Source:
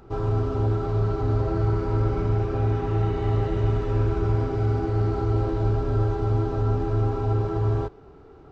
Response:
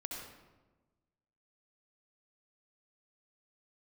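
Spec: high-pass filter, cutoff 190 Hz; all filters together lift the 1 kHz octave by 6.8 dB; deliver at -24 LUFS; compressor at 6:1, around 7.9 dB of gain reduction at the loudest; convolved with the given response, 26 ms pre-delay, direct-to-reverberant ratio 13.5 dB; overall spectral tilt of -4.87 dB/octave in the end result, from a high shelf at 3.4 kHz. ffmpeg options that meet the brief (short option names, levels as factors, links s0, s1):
-filter_complex "[0:a]highpass=190,equalizer=f=1000:t=o:g=8.5,highshelf=f=3400:g=8,acompressor=threshold=0.0282:ratio=6,asplit=2[s0][s1];[1:a]atrim=start_sample=2205,adelay=26[s2];[s1][s2]afir=irnorm=-1:irlink=0,volume=0.224[s3];[s0][s3]amix=inputs=2:normalize=0,volume=3.16"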